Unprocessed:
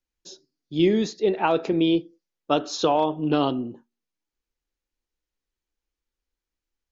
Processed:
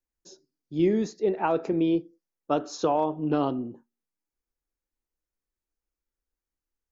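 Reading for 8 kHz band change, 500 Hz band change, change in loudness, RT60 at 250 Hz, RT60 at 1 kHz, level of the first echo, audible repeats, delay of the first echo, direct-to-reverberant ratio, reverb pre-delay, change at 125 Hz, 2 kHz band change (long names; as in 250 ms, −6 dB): can't be measured, −3.0 dB, −3.5 dB, no reverb audible, no reverb audible, no echo audible, no echo audible, no echo audible, no reverb audible, no reverb audible, −3.0 dB, −7.0 dB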